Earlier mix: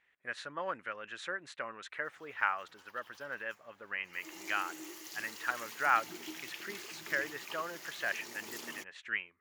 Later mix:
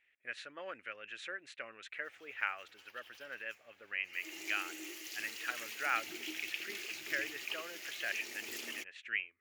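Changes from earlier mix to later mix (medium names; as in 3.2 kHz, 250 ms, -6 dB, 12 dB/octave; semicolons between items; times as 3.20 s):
speech -4.5 dB; master: add fifteen-band graphic EQ 160 Hz -12 dB, 1 kHz -10 dB, 2.5 kHz +9 dB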